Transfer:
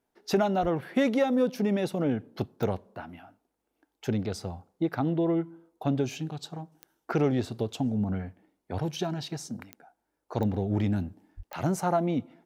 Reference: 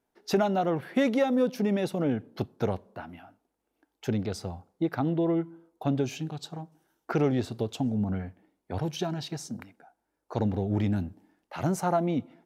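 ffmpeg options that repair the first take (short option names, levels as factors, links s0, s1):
-filter_complex "[0:a]adeclick=t=4,asplit=3[s0][s1][s2];[s0]afade=t=out:st=0.61:d=0.02[s3];[s1]highpass=f=140:w=0.5412,highpass=f=140:w=1.3066,afade=t=in:st=0.61:d=0.02,afade=t=out:st=0.73:d=0.02[s4];[s2]afade=t=in:st=0.73:d=0.02[s5];[s3][s4][s5]amix=inputs=3:normalize=0,asplit=3[s6][s7][s8];[s6]afade=t=out:st=11.36:d=0.02[s9];[s7]highpass=f=140:w=0.5412,highpass=f=140:w=1.3066,afade=t=in:st=11.36:d=0.02,afade=t=out:st=11.48:d=0.02[s10];[s8]afade=t=in:st=11.48:d=0.02[s11];[s9][s10][s11]amix=inputs=3:normalize=0"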